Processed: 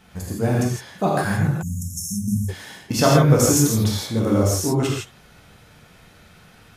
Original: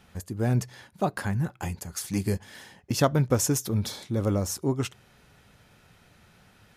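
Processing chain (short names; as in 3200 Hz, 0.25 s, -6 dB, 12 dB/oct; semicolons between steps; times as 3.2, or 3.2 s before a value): non-linear reverb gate 0.19 s flat, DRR -4.5 dB; 1.62–2.49 spectral delete 270–5300 Hz; 1.82–2.28 compressor 2.5:1, threshold -27 dBFS, peak gain reduction 5 dB; gain +2.5 dB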